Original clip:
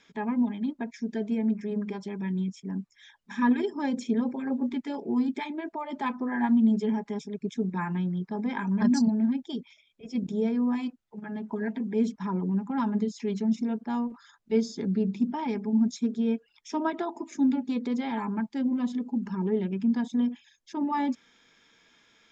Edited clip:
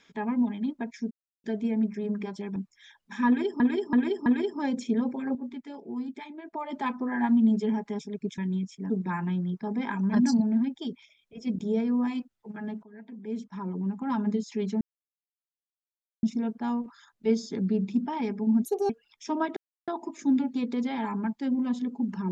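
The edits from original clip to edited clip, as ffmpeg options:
-filter_complex "[0:a]asplit=15[a][b][c][d][e][f][g][h][i][j][k][l][m][n][o];[a]atrim=end=1.11,asetpts=PTS-STARTPTS,afade=t=out:st=1.106:d=0.004:c=hsin,apad=pad_dur=0.33[p];[b]atrim=start=1.11:end=2.232,asetpts=PTS-STARTPTS,afade=t=in:d=0.004:c=hsin[q];[c]atrim=start=2.748:end=3.792[r];[d]atrim=start=3.458:end=3.792[s];[e]atrim=start=3.458:end=3.792[t];[f]atrim=start=3.458:end=4.552[u];[g]atrim=start=4.548:end=5.732,asetpts=PTS-STARTPTS,volume=-8dB[v];[h]atrim=start=5.728:end=7.582[w];[i]atrim=start=2.228:end=2.752[x];[j]atrim=start=7.578:end=11.51,asetpts=PTS-STARTPTS,afade=t=out:st=3.928:d=0.004:c=hsin:silence=0.0630957[y];[k]atrim=start=11.51:end=13.49,asetpts=PTS-STARTPTS,afade=t=in:d=1.47:silence=0.0630957,afade=t=out:st=1.976:d=0.004:c=hsin,apad=pad_dur=1.42[z];[l]atrim=start=13.49:end=15.914,asetpts=PTS-STARTPTS,afade=t=in:d=0.004:c=hsin[aa];[m]atrim=start=15.91:end=16.34,asetpts=PTS-STARTPTS,asetrate=77175,aresample=44100[ab];[n]atrim=start=16.336:end=17.01,asetpts=PTS-STARTPTS,afade=t=out:st=0.67:d=0.004:c=hsin,apad=pad_dur=0.31[ac];[o]atrim=start=17.01,asetpts=PTS-STARTPTS,afade=t=in:d=0.004:c=hsin[ad];[p][q]concat=n=2:v=0:a=1[ae];[ae][r]acrossfade=d=0.004:c1=hsin:c2=hsin[af];[af][s]acrossfade=d=0.004:c1=hsin:c2=hsin[ag];[ag][t]acrossfade=d=0.004:c1=hsin:c2=hsin[ah];[ah][u]acrossfade=d=0.004:c1=hsin:c2=hsin[ai];[ai][v]acrossfade=d=0.004:c1=hsin:c2=hsin[aj];[aj][w]acrossfade=d=0.004:c1=hsin:c2=hsin[ak];[ak][x]acrossfade=d=0.004:c1=hsin:c2=hsin[al];[y][z][aa]concat=n=3:v=0:a=1[am];[al][am]acrossfade=d=0.004:c1=hsin:c2=hsin[an];[an][ab]acrossfade=d=0.004:c1=hsin:c2=hsin[ao];[ac][ad]concat=n=2:v=0:a=1[ap];[ao][ap]acrossfade=d=0.004:c1=hsin:c2=hsin"

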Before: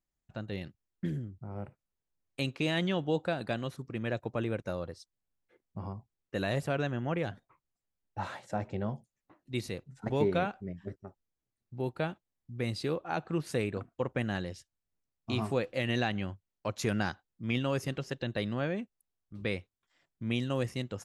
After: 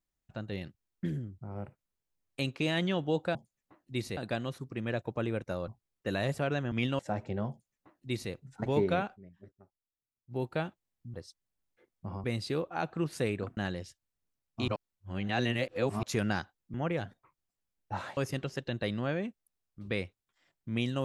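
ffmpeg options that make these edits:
-filter_complex "[0:a]asplit=15[a][b][c][d][e][f][g][h][i][j][k][l][m][n][o];[a]atrim=end=3.352[p];[b]atrim=start=8.938:end=9.762[q];[c]atrim=start=3.348:end=4.862[r];[d]atrim=start=5.958:end=7.002[s];[e]atrim=start=17.438:end=17.712[t];[f]atrim=start=8.428:end=10.76,asetpts=PTS-STARTPTS,afade=t=out:st=2.152:d=0.18:c=exp:silence=0.223872[u];[g]atrim=start=10.76:end=11.58,asetpts=PTS-STARTPTS,volume=-13dB[v];[h]atrim=start=11.58:end=12.582,asetpts=PTS-STARTPTS,afade=t=in:d=0.18:c=exp:silence=0.223872[w];[i]atrim=start=4.858:end=5.962[x];[j]atrim=start=12.578:end=13.912[y];[k]atrim=start=14.268:end=15.382[z];[l]atrim=start=15.378:end=16.732,asetpts=PTS-STARTPTS,areverse[aa];[m]atrim=start=16.728:end=17.442[ab];[n]atrim=start=6.998:end=8.432[ac];[o]atrim=start=17.708[ad];[p][q]acrossfade=d=0.004:c1=hsin:c2=hsin[ae];[ae][r]acrossfade=d=0.004:c1=hsin:c2=hsin[af];[af][s]acrossfade=d=0.004:c1=hsin:c2=hsin[ag];[ag][t]acrossfade=d=0.004:c1=hsin:c2=hsin[ah];[u][v][w]concat=n=3:v=0:a=1[ai];[ah][ai]acrossfade=d=0.004:c1=hsin:c2=hsin[aj];[aj][x]acrossfade=d=0.004:c1=hsin:c2=hsin[ak];[ak][y]acrossfade=d=0.004:c1=hsin:c2=hsin[al];[al][z]acrossfade=d=0.004:c1=hsin:c2=hsin[am];[am][aa]acrossfade=d=0.004:c1=hsin:c2=hsin[an];[an][ab]acrossfade=d=0.004:c1=hsin:c2=hsin[ao];[ao][ac]acrossfade=d=0.004:c1=hsin:c2=hsin[ap];[ap][ad]acrossfade=d=0.004:c1=hsin:c2=hsin"

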